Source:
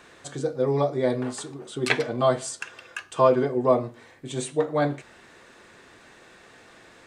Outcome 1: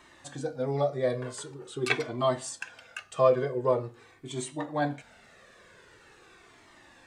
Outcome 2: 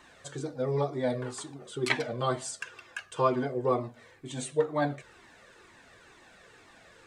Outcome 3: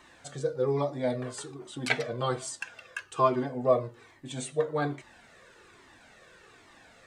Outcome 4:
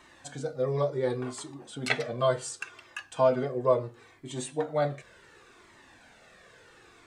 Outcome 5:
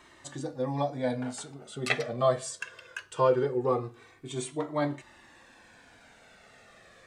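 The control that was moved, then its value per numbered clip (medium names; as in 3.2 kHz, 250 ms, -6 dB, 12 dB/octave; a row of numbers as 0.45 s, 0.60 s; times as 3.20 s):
Shepard-style flanger, rate: 0.45 Hz, 2.1 Hz, 1.2 Hz, 0.7 Hz, 0.21 Hz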